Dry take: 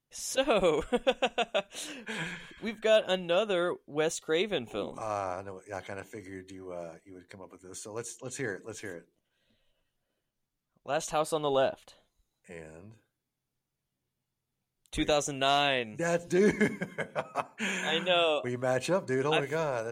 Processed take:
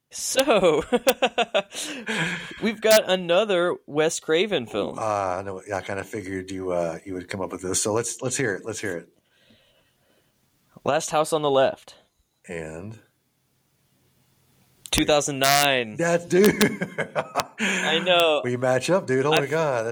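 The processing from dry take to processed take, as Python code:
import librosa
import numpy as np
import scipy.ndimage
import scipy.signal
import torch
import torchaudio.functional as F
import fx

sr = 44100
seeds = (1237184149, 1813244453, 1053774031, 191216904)

y = fx.recorder_agc(x, sr, target_db=-20.0, rise_db_per_s=5.7, max_gain_db=30)
y = (np.mod(10.0 ** (14.5 / 20.0) * y + 1.0, 2.0) - 1.0) / 10.0 ** (14.5 / 20.0)
y = scipy.signal.sosfilt(scipy.signal.butter(2, 64.0, 'highpass', fs=sr, output='sos'), y)
y = y * librosa.db_to_amplitude(7.5)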